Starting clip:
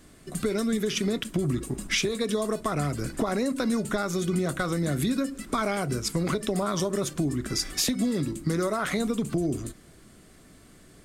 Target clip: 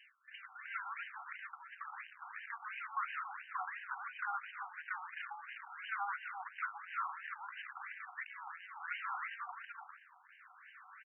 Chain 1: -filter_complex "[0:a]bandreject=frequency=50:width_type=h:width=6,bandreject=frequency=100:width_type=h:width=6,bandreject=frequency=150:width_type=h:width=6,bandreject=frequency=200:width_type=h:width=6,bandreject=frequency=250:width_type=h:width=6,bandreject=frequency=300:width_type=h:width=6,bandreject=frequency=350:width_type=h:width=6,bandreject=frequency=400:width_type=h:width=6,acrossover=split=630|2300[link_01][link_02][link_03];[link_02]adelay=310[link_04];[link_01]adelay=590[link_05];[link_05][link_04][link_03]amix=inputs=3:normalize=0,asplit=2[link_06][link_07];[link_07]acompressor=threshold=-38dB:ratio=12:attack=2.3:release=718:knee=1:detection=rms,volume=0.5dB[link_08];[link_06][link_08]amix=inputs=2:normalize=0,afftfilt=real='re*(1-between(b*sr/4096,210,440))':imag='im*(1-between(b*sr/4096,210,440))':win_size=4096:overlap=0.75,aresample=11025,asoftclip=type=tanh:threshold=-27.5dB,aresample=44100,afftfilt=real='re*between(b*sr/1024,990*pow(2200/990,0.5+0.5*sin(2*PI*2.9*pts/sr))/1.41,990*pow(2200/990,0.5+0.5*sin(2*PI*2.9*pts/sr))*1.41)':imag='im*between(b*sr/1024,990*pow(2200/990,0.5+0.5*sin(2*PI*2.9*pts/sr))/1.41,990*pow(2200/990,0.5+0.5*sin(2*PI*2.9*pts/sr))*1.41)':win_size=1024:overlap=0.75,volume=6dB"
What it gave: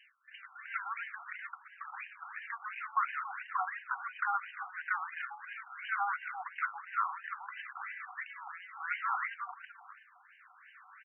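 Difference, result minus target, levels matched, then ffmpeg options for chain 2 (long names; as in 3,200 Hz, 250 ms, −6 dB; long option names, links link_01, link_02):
soft clipping: distortion −7 dB
-filter_complex "[0:a]bandreject=frequency=50:width_type=h:width=6,bandreject=frequency=100:width_type=h:width=6,bandreject=frequency=150:width_type=h:width=6,bandreject=frequency=200:width_type=h:width=6,bandreject=frequency=250:width_type=h:width=6,bandreject=frequency=300:width_type=h:width=6,bandreject=frequency=350:width_type=h:width=6,bandreject=frequency=400:width_type=h:width=6,acrossover=split=630|2300[link_01][link_02][link_03];[link_02]adelay=310[link_04];[link_01]adelay=590[link_05];[link_05][link_04][link_03]amix=inputs=3:normalize=0,asplit=2[link_06][link_07];[link_07]acompressor=threshold=-38dB:ratio=12:attack=2.3:release=718:knee=1:detection=rms,volume=0.5dB[link_08];[link_06][link_08]amix=inputs=2:normalize=0,afftfilt=real='re*(1-between(b*sr/4096,210,440))':imag='im*(1-between(b*sr/4096,210,440))':win_size=4096:overlap=0.75,aresample=11025,asoftclip=type=tanh:threshold=-37.5dB,aresample=44100,afftfilt=real='re*between(b*sr/1024,990*pow(2200/990,0.5+0.5*sin(2*PI*2.9*pts/sr))/1.41,990*pow(2200/990,0.5+0.5*sin(2*PI*2.9*pts/sr))*1.41)':imag='im*between(b*sr/1024,990*pow(2200/990,0.5+0.5*sin(2*PI*2.9*pts/sr))/1.41,990*pow(2200/990,0.5+0.5*sin(2*PI*2.9*pts/sr))*1.41)':win_size=1024:overlap=0.75,volume=6dB"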